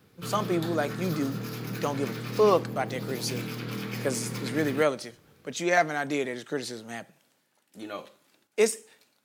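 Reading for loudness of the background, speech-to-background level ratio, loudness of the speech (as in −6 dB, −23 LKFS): −35.5 LKFS, 6.5 dB, −29.0 LKFS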